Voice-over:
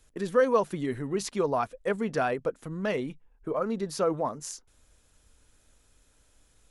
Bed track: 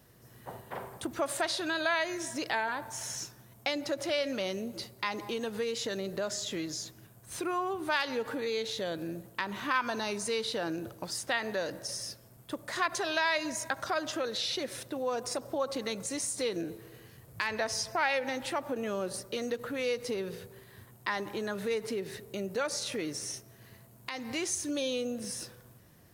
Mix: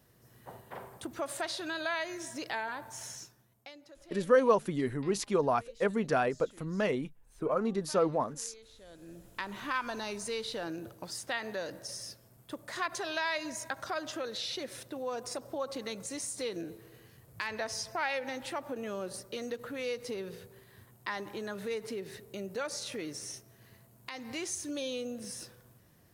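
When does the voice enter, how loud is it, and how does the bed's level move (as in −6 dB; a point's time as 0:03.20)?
3.95 s, −1.0 dB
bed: 0:03.05 −4.5 dB
0:03.89 −22 dB
0:08.78 −22 dB
0:09.33 −4 dB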